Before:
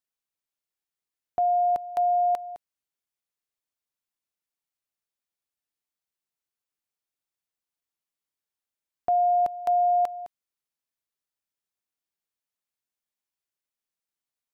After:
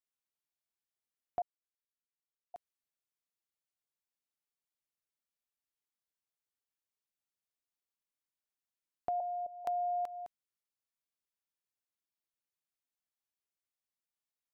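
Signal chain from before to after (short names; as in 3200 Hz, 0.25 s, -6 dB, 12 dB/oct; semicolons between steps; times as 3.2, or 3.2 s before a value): compressor, threshold -26 dBFS, peak gain reduction 6 dB; 1.42–2.54 mute; 9.2–9.65 ladder low-pass 670 Hz, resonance 75%; gain -6.5 dB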